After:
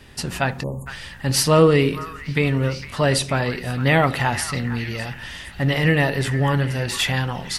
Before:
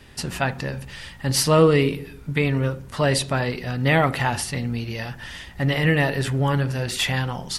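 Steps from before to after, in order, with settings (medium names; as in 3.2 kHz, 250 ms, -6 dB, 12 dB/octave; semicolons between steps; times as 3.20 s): repeats whose band climbs or falls 458 ms, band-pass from 1.5 kHz, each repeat 0.7 oct, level -9.5 dB; spectral selection erased 0.63–0.87 s, 1.2–6.5 kHz; trim +1.5 dB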